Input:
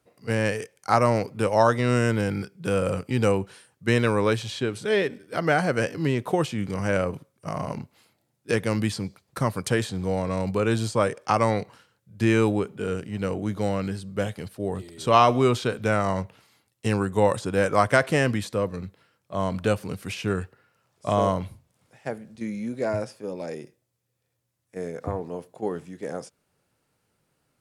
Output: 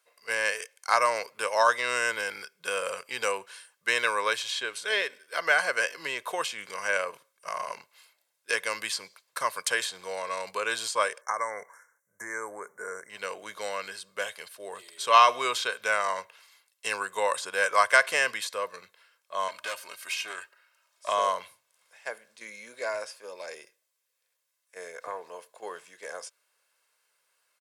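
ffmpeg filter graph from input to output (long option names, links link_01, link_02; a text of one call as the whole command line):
ffmpeg -i in.wav -filter_complex "[0:a]asettb=1/sr,asplit=3[link_01][link_02][link_03];[link_01]atrim=end=11.214[link_04];[link_02]atrim=start=11.21:end=13.1,asetpts=PTS-STARTPTS,afade=type=in:duration=0.004:curve=qsin,afade=type=out:start_time=1.886:duration=0.004:curve=qsin,acompressor=threshold=-23dB:ratio=3:attack=3.2:release=140:knee=1:detection=peak,asuperstop=centerf=3500:order=20:qfactor=1[link_05];[link_03]atrim=start=13.096[link_06];[link_04][link_05]acrossfade=duration=0.004:curve1=hsin:curve2=qsin[link_07];[link_07][link_06]acrossfade=duration=0.004:curve1=qsin:curve2=hsin,asettb=1/sr,asplit=3[link_08][link_09][link_10];[link_08]atrim=end=19.484[link_11];[link_09]atrim=start=19.48:end=21.08,asetpts=PTS-STARTPTS,afade=type=in:duration=0.004:curve=qsin,afade=type=out:start_time=1.596:duration=0.004:curve=qsin,lowshelf=frequency=390:gain=-6,aecho=1:1:3.2:0.57,atrim=end_sample=70560,aeval=exprs='(tanh(20*val(0)+0.3)-tanh(0.3))/20':channel_layout=same[link_12];[link_10]atrim=start=21.076[link_13];[link_11][link_12]acrossfade=duration=0.004:curve1=hsin:curve2=qsin[link_14];[link_14][link_13]acrossfade=duration=0.004:curve1=qsin:curve2=hsin,highpass=1100,aecho=1:1:1.9:0.43,volume=3dB" out.wav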